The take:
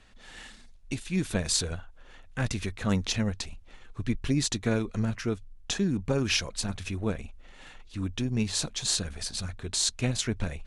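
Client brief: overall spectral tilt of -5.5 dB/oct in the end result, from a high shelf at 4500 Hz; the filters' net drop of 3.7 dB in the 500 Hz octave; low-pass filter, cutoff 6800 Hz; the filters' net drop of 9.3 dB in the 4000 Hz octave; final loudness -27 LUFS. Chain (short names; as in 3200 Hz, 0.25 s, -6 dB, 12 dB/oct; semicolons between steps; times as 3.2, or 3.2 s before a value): LPF 6800 Hz; bell 500 Hz -4.5 dB; bell 4000 Hz -8 dB; high shelf 4500 Hz -5 dB; gain +6 dB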